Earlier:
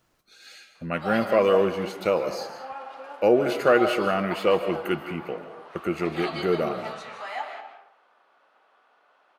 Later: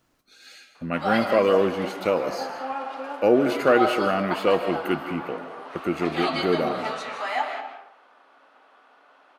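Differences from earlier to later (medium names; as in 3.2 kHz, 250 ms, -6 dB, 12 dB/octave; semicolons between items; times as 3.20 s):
background +6.5 dB; master: add peaking EQ 270 Hz +10.5 dB 0.21 oct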